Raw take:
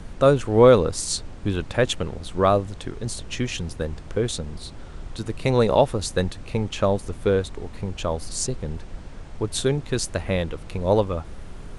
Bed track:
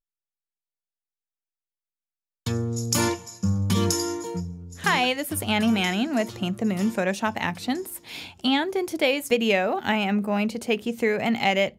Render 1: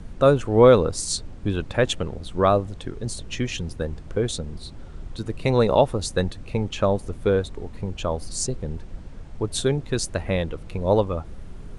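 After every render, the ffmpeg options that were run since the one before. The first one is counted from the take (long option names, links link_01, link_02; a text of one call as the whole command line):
ffmpeg -i in.wav -af "afftdn=noise_reduction=6:noise_floor=-40" out.wav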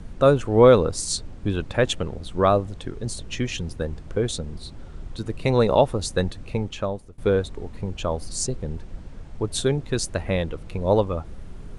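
ffmpeg -i in.wav -filter_complex "[0:a]asplit=2[link_01][link_02];[link_01]atrim=end=7.18,asetpts=PTS-STARTPTS,afade=type=out:start_time=6.49:duration=0.69:silence=0.0794328[link_03];[link_02]atrim=start=7.18,asetpts=PTS-STARTPTS,afade=type=in:duration=0.004:curve=hsin:silence=0.0794328[link_04];[link_03][link_04]concat=n=2:v=0:a=1" out.wav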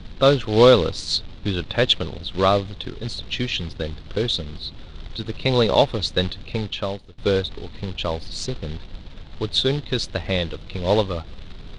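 ffmpeg -i in.wav -af "acrusher=bits=4:mode=log:mix=0:aa=0.000001,lowpass=frequency=3800:width_type=q:width=3.8" out.wav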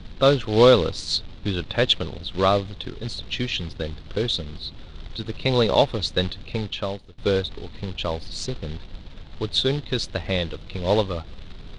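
ffmpeg -i in.wav -af "volume=-1.5dB" out.wav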